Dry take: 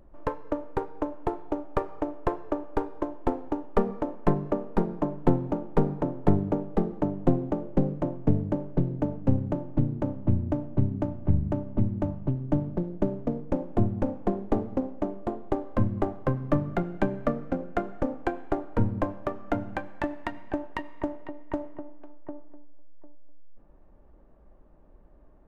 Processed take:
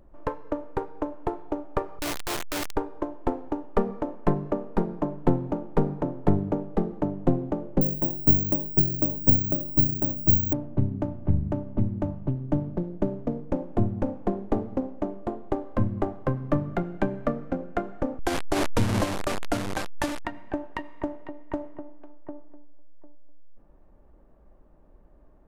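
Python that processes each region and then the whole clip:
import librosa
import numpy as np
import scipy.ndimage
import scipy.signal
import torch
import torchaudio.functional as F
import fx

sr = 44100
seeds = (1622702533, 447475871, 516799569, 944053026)

y = fx.chain(x, sr, fx.clip_1bit(),
    fx.high_shelf(hz=2100.0, db=8.5), at=(1.99, 2.76))
y = fx.chain(y, sr, fx.resample_bad(factor=2, down='none', up='zero_stuff'),
    fx.notch_cascade(direction='falling', hz=1.6), at=(7.81, 10.53))
y = fx.chain(y, sr, fx.delta_mod(bps=64000, step_db=-24.5),
    fx.pre_swell(db_per_s=23.0), at=(18.19, 20.25))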